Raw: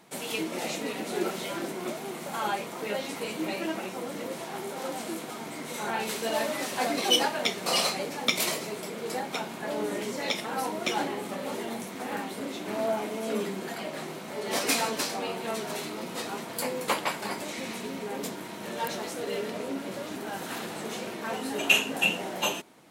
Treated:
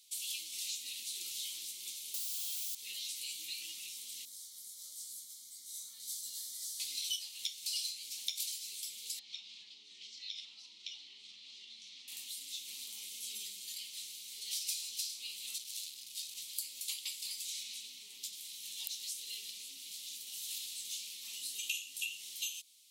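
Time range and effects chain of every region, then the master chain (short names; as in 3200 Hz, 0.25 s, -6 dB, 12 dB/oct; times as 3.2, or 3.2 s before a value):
2.14–2.75 low shelf 160 Hz -10.5 dB + requantised 6-bit, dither triangular
4.25–6.8 fixed phaser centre 530 Hz, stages 8 + detuned doubles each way 12 cents
9.19–12.08 compressor 5:1, threshold -34 dBFS + LPF 4800 Hz 24 dB/oct
15.58–16.37 bell 1100 Hz -6 dB 1.3 oct + core saturation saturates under 1900 Hz
17.63–18.33 HPF 56 Hz + high shelf 6200 Hz -8.5 dB
whole clip: inverse Chebyshev high-pass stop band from 1700 Hz, stop band 40 dB; compressor 4:1, threshold -40 dBFS; gain +3 dB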